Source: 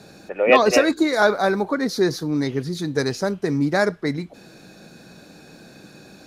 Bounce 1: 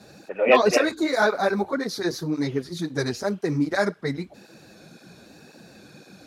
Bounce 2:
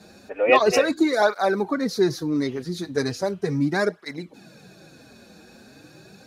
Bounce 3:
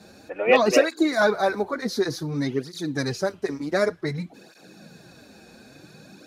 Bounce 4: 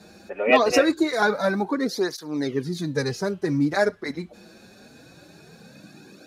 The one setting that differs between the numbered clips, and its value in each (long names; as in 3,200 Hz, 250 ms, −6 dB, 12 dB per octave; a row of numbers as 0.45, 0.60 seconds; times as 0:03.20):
through-zero flanger with one copy inverted, nulls at: 1.9, 0.37, 0.55, 0.23 Hertz